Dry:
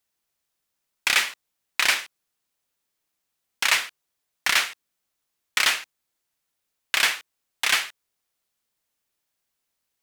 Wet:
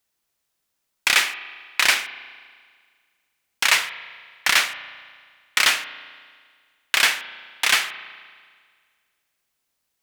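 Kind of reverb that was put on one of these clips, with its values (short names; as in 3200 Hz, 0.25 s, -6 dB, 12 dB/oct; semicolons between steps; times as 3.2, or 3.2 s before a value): spring tank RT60 1.8 s, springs 35 ms, chirp 75 ms, DRR 12 dB; gain +3 dB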